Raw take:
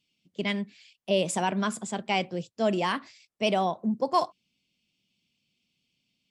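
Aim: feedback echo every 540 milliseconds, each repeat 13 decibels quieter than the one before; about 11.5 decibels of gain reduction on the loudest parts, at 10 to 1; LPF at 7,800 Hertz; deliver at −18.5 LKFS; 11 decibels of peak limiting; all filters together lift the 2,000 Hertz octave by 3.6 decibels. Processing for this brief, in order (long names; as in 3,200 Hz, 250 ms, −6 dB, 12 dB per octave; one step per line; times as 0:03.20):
low-pass filter 7,800 Hz
parametric band 2,000 Hz +4.5 dB
downward compressor 10 to 1, threshold −31 dBFS
brickwall limiter −31 dBFS
repeating echo 540 ms, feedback 22%, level −13 dB
level +23.5 dB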